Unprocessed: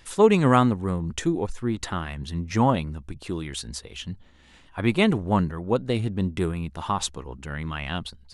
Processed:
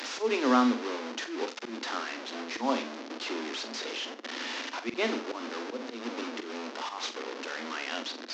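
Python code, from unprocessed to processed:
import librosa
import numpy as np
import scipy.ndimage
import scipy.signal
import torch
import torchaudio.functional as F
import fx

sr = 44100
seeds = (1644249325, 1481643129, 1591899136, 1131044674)

y = fx.delta_mod(x, sr, bps=32000, step_db=-23.5)
y = scipy.signal.sosfilt(scipy.signal.cheby1(10, 1.0, 230.0, 'highpass', fs=sr, output='sos'), y)
y = fx.auto_swell(y, sr, attack_ms=149.0)
y = fx.room_flutter(y, sr, wall_m=7.6, rt60_s=0.29)
y = y * 10.0 ** (-4.5 / 20.0)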